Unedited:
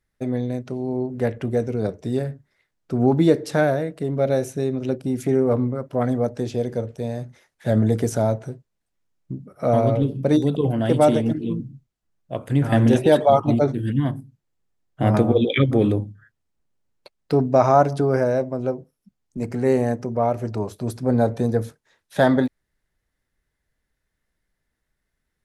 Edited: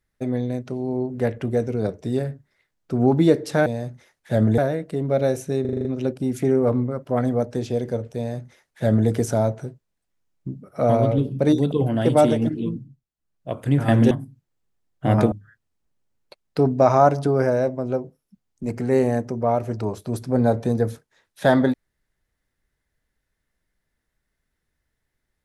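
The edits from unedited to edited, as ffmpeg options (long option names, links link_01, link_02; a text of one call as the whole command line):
ffmpeg -i in.wav -filter_complex "[0:a]asplit=13[link_01][link_02][link_03][link_04][link_05][link_06][link_07][link_08][link_09][link_10][link_11][link_12][link_13];[link_01]atrim=end=3.662[link_14];[link_02]atrim=start=7.008:end=7.932[link_15];[link_03]atrim=start=3.658:end=4.732[link_16];[link_04]atrim=start=4.688:end=4.732[link_17];[link_05]atrim=start=4.688:end=4.732[link_18];[link_06]atrim=start=4.688:end=4.732[link_19];[link_07]atrim=start=4.688:end=4.732[link_20];[link_08]atrim=start=4.688:end=4.732[link_21];[link_09]atrim=start=4.688:end=11.84,asetpts=PTS-STARTPTS,afade=type=out:start_time=6.782:duration=0.37:silence=0.354813[link_22];[link_10]atrim=start=11.84:end=11.99,asetpts=PTS-STARTPTS,volume=-9dB[link_23];[link_11]atrim=start=11.99:end=12.952,asetpts=PTS-STARTPTS,afade=type=in:duration=0.37:silence=0.354813[link_24];[link_12]atrim=start=14.068:end=15.282[link_25];[link_13]atrim=start=16.058[link_26];[link_14][link_15]acrossfade=duration=0.004:curve1=hsin:curve2=hsin[link_27];[link_27][link_16]acrossfade=duration=0.004:curve1=hsin:curve2=hsin[link_28];[link_28][link_17]acrossfade=duration=0.004:curve1=hsin:curve2=hsin[link_29];[link_29][link_18]acrossfade=duration=0.004:curve1=hsin:curve2=hsin[link_30];[link_30][link_19]acrossfade=duration=0.004:curve1=hsin:curve2=hsin[link_31];[link_31][link_20]acrossfade=duration=0.004:curve1=hsin:curve2=hsin[link_32];[link_32][link_21]acrossfade=duration=0.004:curve1=hsin:curve2=hsin[link_33];[link_22][link_23][link_24]concat=n=3:v=0:a=1[link_34];[link_33][link_34]acrossfade=duration=0.004:curve1=hsin:curve2=hsin[link_35];[link_35][link_25]acrossfade=duration=0.004:curve1=hsin:curve2=hsin[link_36];[link_36][link_26]acrossfade=duration=0.004:curve1=hsin:curve2=hsin" out.wav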